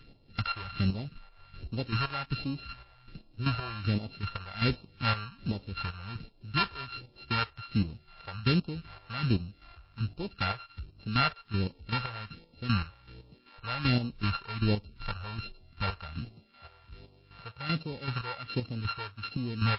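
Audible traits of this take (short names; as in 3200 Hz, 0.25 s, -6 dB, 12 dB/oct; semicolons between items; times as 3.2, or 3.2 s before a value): a buzz of ramps at a fixed pitch in blocks of 32 samples; chopped level 2.6 Hz, depth 65%, duty 35%; phasing stages 2, 1.3 Hz, lowest notch 230–1500 Hz; MP3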